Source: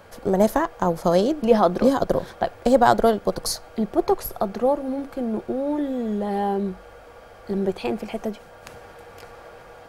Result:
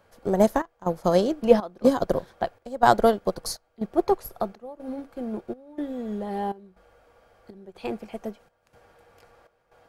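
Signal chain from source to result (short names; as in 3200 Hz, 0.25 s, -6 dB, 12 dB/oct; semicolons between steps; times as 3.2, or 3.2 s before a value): step gate "xxxxx..x" 122 bpm -12 dB; upward expander 1.5:1, over -39 dBFS; gain +1 dB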